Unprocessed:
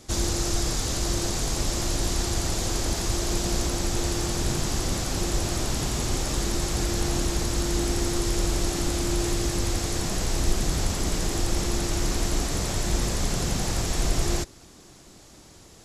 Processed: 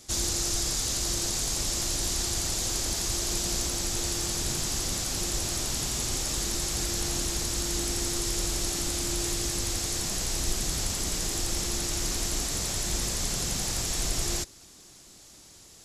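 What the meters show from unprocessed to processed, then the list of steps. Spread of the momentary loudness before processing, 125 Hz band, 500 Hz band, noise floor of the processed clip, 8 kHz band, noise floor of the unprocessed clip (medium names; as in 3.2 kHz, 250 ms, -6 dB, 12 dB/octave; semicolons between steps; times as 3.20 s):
1 LU, -7.5 dB, -7.0 dB, -52 dBFS, +2.5 dB, -50 dBFS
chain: treble shelf 2.5 kHz +11 dB; trim -7.5 dB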